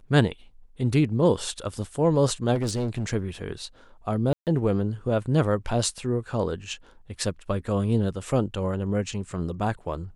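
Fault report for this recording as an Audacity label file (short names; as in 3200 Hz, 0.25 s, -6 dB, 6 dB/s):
2.540000	3.130000	clipped -22.5 dBFS
4.330000	4.470000	gap 0.138 s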